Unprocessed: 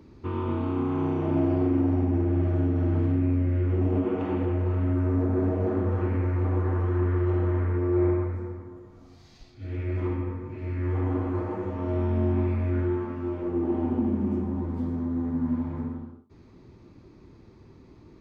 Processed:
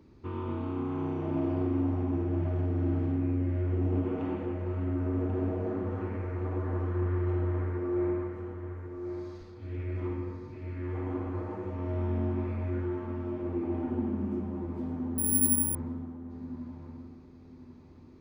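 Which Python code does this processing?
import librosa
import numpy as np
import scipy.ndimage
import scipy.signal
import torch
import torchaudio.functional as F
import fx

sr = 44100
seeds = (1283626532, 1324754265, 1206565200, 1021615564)

p1 = x + fx.echo_feedback(x, sr, ms=1089, feedback_pct=28, wet_db=-8.0, dry=0)
p2 = fx.resample_bad(p1, sr, factor=4, down='filtered', up='zero_stuff', at=(15.18, 15.75))
y = p2 * 10.0 ** (-6.0 / 20.0)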